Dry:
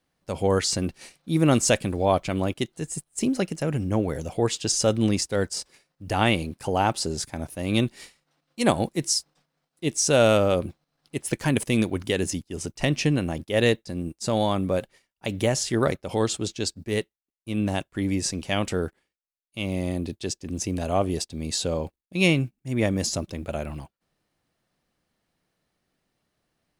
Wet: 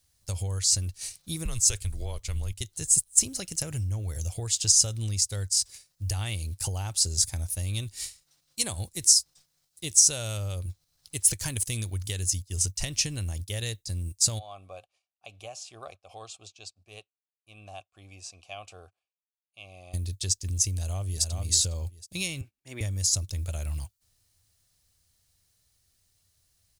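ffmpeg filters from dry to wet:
-filter_complex "[0:a]asettb=1/sr,asplit=3[s0][s1][s2];[s0]atrim=end=1.454[s3];[s1]atrim=start=1.45:end=2.61,asetpts=PTS-STARTPTS,afade=t=in:d=0.004:c=qsin,afade=t=out:st=1.156:d=0.004:c=qsin,afreqshift=-110[s4];[s2]atrim=start=2.606[s5];[s3][s4]acrossfade=d=0.004:c1=hsin:c2=qsin[s6];[s6][s5]acrossfade=d=0.004:c1=qsin:c2=hsin,asplit=3[s7][s8][s9];[s7]afade=t=out:st=14.38:d=0.02[s10];[s8]asplit=3[s11][s12][s13];[s11]bandpass=f=730:t=q:w=8,volume=1[s14];[s12]bandpass=f=1090:t=q:w=8,volume=0.501[s15];[s13]bandpass=f=2440:t=q:w=8,volume=0.355[s16];[s14][s15][s16]amix=inputs=3:normalize=0,afade=t=in:st=14.38:d=0.02,afade=t=out:st=19.93:d=0.02[s17];[s9]afade=t=in:st=19.93:d=0.02[s18];[s10][s17][s18]amix=inputs=3:normalize=0,asplit=2[s19][s20];[s20]afade=t=in:st=20.74:d=0.01,afade=t=out:st=21.4:d=0.01,aecho=0:1:410|820:0.421697|0.0421697[s21];[s19][s21]amix=inputs=2:normalize=0,asettb=1/sr,asplit=3[s22][s23][s24];[s22]atrim=end=22.414[s25];[s23]atrim=start=22.41:end=22.81,asetpts=PTS-STARTPTS,afade=t=in:d=0.004:c=qsin,afade=t=out:st=0.396:d=0.004:c=qsin,acrossover=split=280 3400:gain=0.0794 1 0.141[s26][s27][s28];[s26][s27][s28]amix=inputs=3:normalize=0[s29];[s24]atrim=start=22.806[s30];[s25][s29]acrossfade=d=0.004:c1=hsin:c2=qsin[s31];[s31][s30]acrossfade=d=0.004:c1=qsin:c2=hsin,lowshelf=f=120:t=q:w=3:g=7,acompressor=threshold=0.0355:ratio=6,firequalizer=gain_entry='entry(160,0);entry(240,-10);entry(2800,0);entry(4000,7);entry(6600,14)':delay=0.05:min_phase=1,volume=1.12"

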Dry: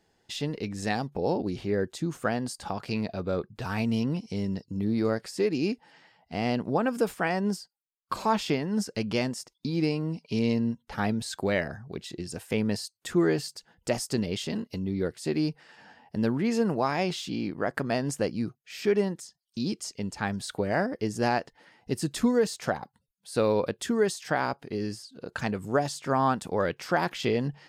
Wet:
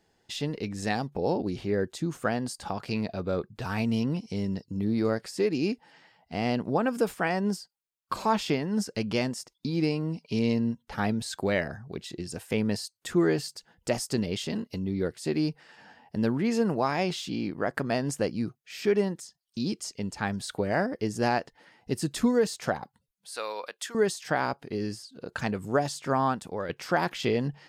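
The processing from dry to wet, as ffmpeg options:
-filter_complex "[0:a]asettb=1/sr,asplit=3[s0][s1][s2];[s0]atrim=end=23.334[s3];[s1]atrim=start=23.33:end=23.95,asetpts=PTS-STARTPTS,afade=t=in:d=0.004:c=qsin,afade=t=out:st=0.616:d=0.004:c=qsin,highpass=1000[s4];[s2]atrim=start=23.946[s5];[s3][s4]acrossfade=d=0.004:c1=hsin:c2=qsin[s6];[s6][s5]acrossfade=d=0.004:c1=qsin:c2=hsin,asplit=2[s7][s8];[s7]atrim=end=26.69,asetpts=PTS-STARTPTS,afade=t=out:st=26.1:d=0.59:silence=0.375837[s9];[s8]atrim=start=26.69,asetpts=PTS-STARTPTS,afade=t=in:d=0.004:c=hsin:silence=0.375837[s10];[s9][s10]concat=n=2:v=0:a=1"

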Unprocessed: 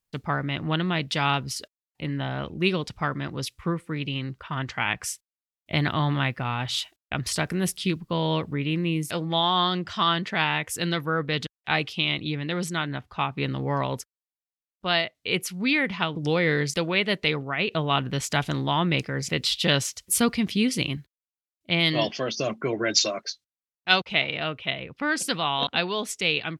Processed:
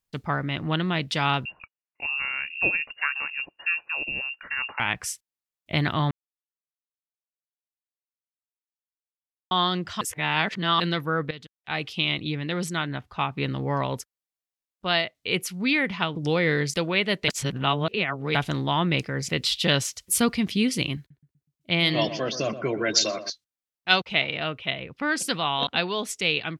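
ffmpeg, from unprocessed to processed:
-filter_complex "[0:a]asettb=1/sr,asplit=3[s0][s1][s2];[s0]atrim=end=1.454[s3];[s1]atrim=start=1.45:end=4.8,asetpts=PTS-STARTPTS,afade=t=in:d=0.004:c=qsin,afade=t=out:st=3.346:d=0.004:c=qsin,lowpass=f=2500:t=q:w=0.5098,lowpass=f=2500:t=q:w=0.6013,lowpass=f=2500:t=q:w=0.9,lowpass=f=2500:t=q:w=2.563,afreqshift=-2900[s4];[s2]atrim=start=4.796[s5];[s3][s4]acrossfade=d=0.004:c1=hsin:c2=qsin[s6];[s6][s5]acrossfade=d=0.004:c1=qsin:c2=hsin,asettb=1/sr,asplit=3[s7][s8][s9];[s7]atrim=end=20.984[s10];[s8]atrim=start=20.98:end=23.3,asetpts=PTS-STARTPTS,afade=t=in:d=0.004:c=qsin,afade=t=out:st=2.316:d=0.004:c=qsin,asplit=2[s11][s12];[s12]adelay=123,lowpass=f=1300:p=1,volume=0.299,asplit=2[s13][s14];[s14]adelay=123,lowpass=f=1300:p=1,volume=0.47,asplit=2[s15][s16];[s16]adelay=123,lowpass=f=1300:p=1,volume=0.47,asplit=2[s17][s18];[s18]adelay=123,lowpass=f=1300:p=1,volume=0.47,asplit=2[s19][s20];[s20]adelay=123,lowpass=f=1300:p=1,volume=0.47[s21];[s11][s13][s15][s17][s19][s21]amix=inputs=6:normalize=0,atrim=end_sample=102312[s22];[s9]atrim=start=23.296[s23];[s10][s22]acrossfade=d=0.004:c1=hsin:c2=qsin[s24];[s24][s23]acrossfade=d=0.004:c1=qsin:c2=hsin,asplit=8[s25][s26][s27][s28][s29][s30][s31][s32];[s25]atrim=end=6.11,asetpts=PTS-STARTPTS,afade=t=out:st=6.106:d=0.004:c=hsin[s33];[s26]atrim=start=6.11:end=9.51,asetpts=PTS-STARTPTS,volume=0[s34];[s27]atrim=start=9.51:end=10.012,asetpts=PTS-STARTPTS,afade=t=in:d=0.004:c=hsin[s35];[s28]atrim=start=10.008:end=10.802,asetpts=PTS-STARTPTS,areverse[s36];[s29]atrim=start=10.798:end=11.31,asetpts=PTS-STARTPTS,afade=t=out:st=0.508:d=0.004:c=hsin:silence=0.188365[s37];[s30]atrim=start=11.31:end=17.282,asetpts=PTS-STARTPTS,afade=t=in:d=0.65:c=qua:silence=0.188365[s38];[s31]atrim=start=17.278:end=18.352,asetpts=PTS-STARTPTS,areverse[s39];[s32]atrim=start=18.348[s40];[s33][s34][s35]concat=n=3:v=0:a=1[s41];[s41][s36]acrossfade=d=0.004:c1=hsin:c2=hsin[s42];[s37][s38]concat=n=2:v=0:a=1[s43];[s42][s43]acrossfade=d=0.004:c1=hsin:c2=hsin[s44];[s44][s39]acrossfade=d=0.004:c1=hsin:c2=hsin[s45];[s45][s40]acrossfade=d=0.004:c1=hsin:c2=hsin"

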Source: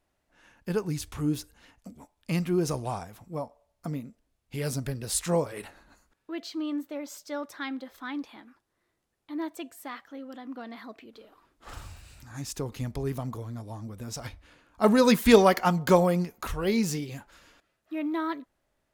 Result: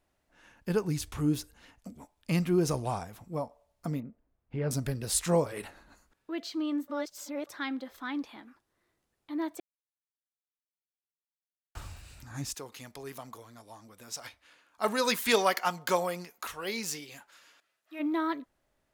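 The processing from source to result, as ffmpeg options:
-filter_complex "[0:a]asettb=1/sr,asplit=3[s0][s1][s2];[s0]atrim=end=4.004[s3];[s1]atrim=start=4:end=4.71,asetpts=PTS-STARTPTS,afade=t=in:d=0.004:c=qsin,afade=t=out:st=0.706:d=0.004:c=qsin,lowpass=1500[s4];[s2]atrim=start=4.706[s5];[s3][s4]acrossfade=d=0.004:c1=hsin:c2=qsin[s6];[s6][s5]acrossfade=d=0.004:c1=qsin:c2=hsin,asplit=3[s7][s8][s9];[s7]afade=t=out:st=12.53:d=0.02[s10];[s8]highpass=f=1200:p=1,afade=t=in:st=12.53:d=0.02,afade=t=out:st=17.99:d=0.02[s11];[s9]afade=t=in:st=17.99:d=0.02[s12];[s10][s11][s12]amix=inputs=3:normalize=0,asplit=5[s13][s14][s15][s16][s17];[s13]atrim=end=6.882[s18];[s14]atrim=start=6.878:end=7.472,asetpts=PTS-STARTPTS,areverse[s19];[s15]atrim=start=7.468:end=9.6,asetpts=PTS-STARTPTS,afade=t=out:st=2.128:d=0.004:c=hsin[s20];[s16]atrim=start=9.6:end=11.75,asetpts=PTS-STARTPTS,volume=0[s21];[s17]atrim=start=11.75,asetpts=PTS-STARTPTS,afade=t=in:d=0.004:c=hsin[s22];[s18][s19]acrossfade=d=0.004:c1=hsin:c2=hsin[s23];[s20][s21][s22]concat=n=3:v=0:a=1[s24];[s23][s24]acrossfade=d=0.004:c1=hsin:c2=hsin"

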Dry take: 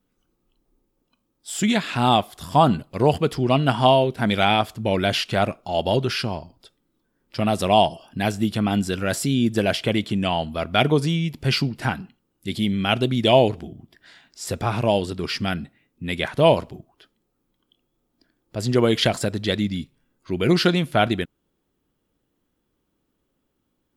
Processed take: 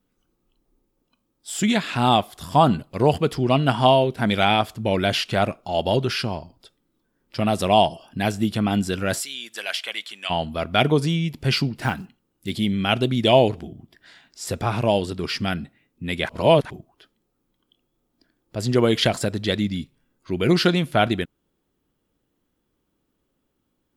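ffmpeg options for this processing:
-filter_complex "[0:a]asplit=3[s0][s1][s2];[s0]afade=t=out:st=9.2:d=0.02[s3];[s1]highpass=1300,afade=t=in:st=9.2:d=0.02,afade=t=out:st=10.29:d=0.02[s4];[s2]afade=t=in:st=10.29:d=0.02[s5];[s3][s4][s5]amix=inputs=3:normalize=0,asplit=3[s6][s7][s8];[s6]afade=t=out:st=11.77:d=0.02[s9];[s7]acrusher=bits=7:mode=log:mix=0:aa=0.000001,afade=t=in:st=11.77:d=0.02,afade=t=out:st=12.5:d=0.02[s10];[s8]afade=t=in:st=12.5:d=0.02[s11];[s9][s10][s11]amix=inputs=3:normalize=0,asplit=3[s12][s13][s14];[s12]atrim=end=16.292[s15];[s13]atrim=start=16.288:end=16.702,asetpts=PTS-STARTPTS,areverse[s16];[s14]atrim=start=16.698[s17];[s15][s16]acrossfade=d=0.004:c1=hsin:c2=hsin[s18];[s18][s17]acrossfade=d=0.004:c1=hsin:c2=hsin"

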